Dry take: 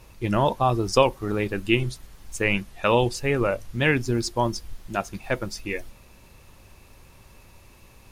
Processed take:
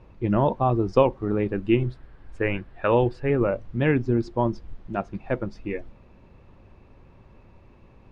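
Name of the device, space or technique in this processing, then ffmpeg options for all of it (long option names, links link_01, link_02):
phone in a pocket: -filter_complex "[0:a]lowpass=3500,equalizer=frequency=250:width_type=o:width=2.5:gain=4.5,highshelf=frequency=2200:gain=-12,asettb=1/sr,asplit=3[link_01][link_02][link_03];[link_01]atrim=end=1.884[link_04];[link_02]atrim=start=1.88:end=3.3,asetpts=PTS-STARTPTS,afade=type=in:duration=0.004:curve=qsin,afade=type=out:start_time=1.416:duration=0.004:curve=qsin,equalizer=frequency=200:width_type=o:width=0.33:gain=-9,equalizer=frequency=1600:width_type=o:width=0.33:gain=8,equalizer=frequency=6300:width_type=o:width=0.33:gain=-8[link_05];[link_03]atrim=start=3.296[link_06];[link_04][link_05]acrossfade=duration=0.004:curve1=hsin:curve2=qsin[link_07];[link_07][link_06]acrossfade=duration=0.004:curve1=qsin:curve2=hsin,volume=-1.5dB"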